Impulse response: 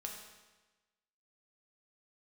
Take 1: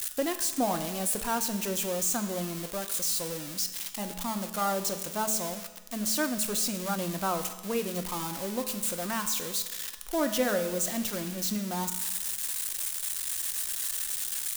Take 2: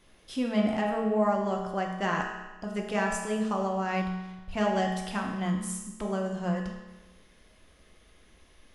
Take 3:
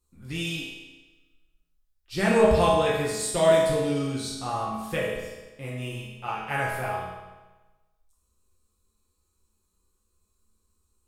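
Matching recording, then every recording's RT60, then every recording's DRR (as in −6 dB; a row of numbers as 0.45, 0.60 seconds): 2; 1.2, 1.2, 1.2 seconds; 7.5, 0.0, −7.0 decibels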